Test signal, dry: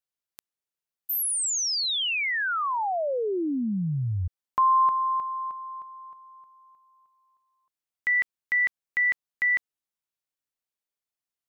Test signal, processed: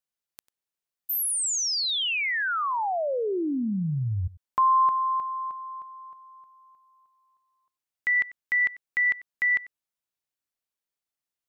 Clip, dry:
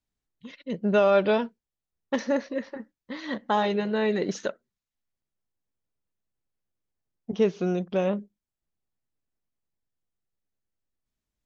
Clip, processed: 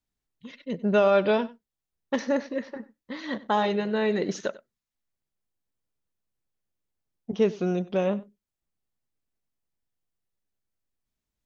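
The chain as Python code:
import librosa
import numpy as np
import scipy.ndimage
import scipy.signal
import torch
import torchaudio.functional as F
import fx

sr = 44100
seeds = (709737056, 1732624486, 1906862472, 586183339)

y = x + 10.0 ** (-19.5 / 20.0) * np.pad(x, (int(95 * sr / 1000.0), 0))[:len(x)]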